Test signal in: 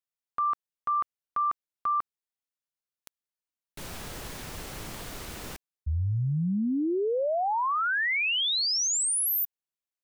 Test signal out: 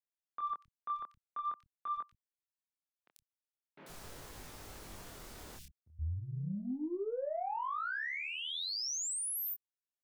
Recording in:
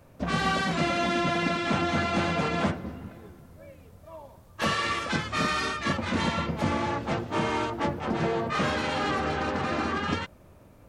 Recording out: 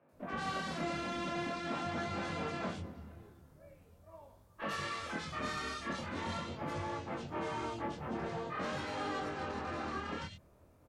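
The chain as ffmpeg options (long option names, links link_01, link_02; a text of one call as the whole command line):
ffmpeg -i in.wav -filter_complex "[0:a]acrossover=split=160|2700[link_01][link_02][link_03];[link_03]adelay=90[link_04];[link_01]adelay=120[link_05];[link_05][link_02][link_04]amix=inputs=3:normalize=0,aeval=exprs='0.188*(cos(1*acos(clip(val(0)/0.188,-1,1)))-cos(1*PI/2))+0.00376*(cos(2*acos(clip(val(0)/0.188,-1,1)))-cos(2*PI/2))+0.00841*(cos(5*acos(clip(val(0)/0.188,-1,1)))-cos(5*PI/2))':channel_layout=same,flanger=delay=19.5:depth=7.5:speed=0.44,volume=-8.5dB" out.wav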